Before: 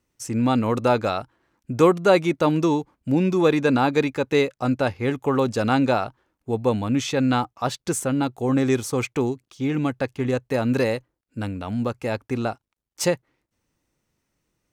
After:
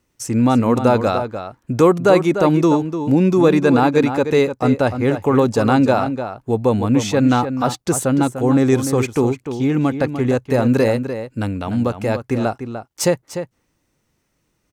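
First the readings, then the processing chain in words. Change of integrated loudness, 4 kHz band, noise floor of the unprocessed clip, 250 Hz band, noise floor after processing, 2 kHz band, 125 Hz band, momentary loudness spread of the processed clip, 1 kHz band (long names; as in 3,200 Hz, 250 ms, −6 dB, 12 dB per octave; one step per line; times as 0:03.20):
+5.5 dB, +2.0 dB, −81 dBFS, +6.5 dB, −69 dBFS, +3.0 dB, +6.5 dB, 10 LU, +5.0 dB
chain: dynamic equaliser 3,000 Hz, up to −5 dB, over −40 dBFS, Q 0.72
in parallel at +0.5 dB: brickwall limiter −13.5 dBFS, peak gain reduction 7.5 dB
on the sum: slap from a distant wall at 51 metres, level −9 dB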